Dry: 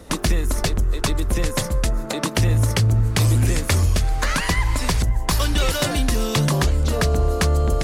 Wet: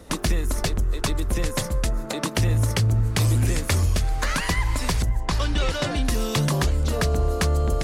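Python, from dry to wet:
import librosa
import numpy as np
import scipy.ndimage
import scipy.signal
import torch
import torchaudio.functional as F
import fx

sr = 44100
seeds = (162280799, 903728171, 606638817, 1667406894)

y = fx.air_absorb(x, sr, metres=75.0, at=(5.2, 6.05))
y = y * librosa.db_to_amplitude(-3.0)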